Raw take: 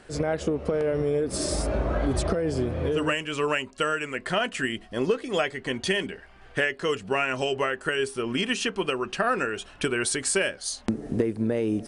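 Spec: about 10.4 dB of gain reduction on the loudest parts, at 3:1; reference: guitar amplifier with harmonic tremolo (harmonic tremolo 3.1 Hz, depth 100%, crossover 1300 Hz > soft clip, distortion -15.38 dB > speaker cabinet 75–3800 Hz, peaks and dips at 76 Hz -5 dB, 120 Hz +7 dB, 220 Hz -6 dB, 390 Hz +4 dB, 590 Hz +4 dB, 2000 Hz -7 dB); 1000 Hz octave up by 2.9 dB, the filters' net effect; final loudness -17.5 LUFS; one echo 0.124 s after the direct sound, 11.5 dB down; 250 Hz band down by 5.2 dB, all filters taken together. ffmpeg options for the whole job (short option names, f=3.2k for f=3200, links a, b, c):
-filter_complex "[0:a]equalizer=f=250:t=o:g=-8,equalizer=f=1k:t=o:g=4.5,acompressor=threshold=-34dB:ratio=3,aecho=1:1:124:0.266,acrossover=split=1300[a][b];[a]aeval=exprs='val(0)*(1-1/2+1/2*cos(2*PI*3.1*n/s))':c=same[c];[b]aeval=exprs='val(0)*(1-1/2-1/2*cos(2*PI*3.1*n/s))':c=same[d];[c][d]amix=inputs=2:normalize=0,asoftclip=threshold=-32dB,highpass=75,equalizer=f=76:t=q:w=4:g=-5,equalizer=f=120:t=q:w=4:g=7,equalizer=f=220:t=q:w=4:g=-6,equalizer=f=390:t=q:w=4:g=4,equalizer=f=590:t=q:w=4:g=4,equalizer=f=2k:t=q:w=4:g=-7,lowpass=f=3.8k:w=0.5412,lowpass=f=3.8k:w=1.3066,volume=24dB"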